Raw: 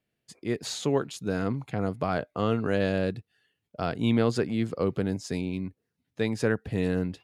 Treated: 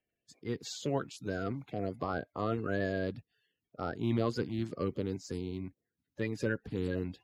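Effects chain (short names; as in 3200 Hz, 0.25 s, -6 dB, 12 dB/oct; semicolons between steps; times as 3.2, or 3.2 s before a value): bin magnitudes rounded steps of 30 dB; bell 8900 Hz -11 dB 0.21 oct; gain -6.5 dB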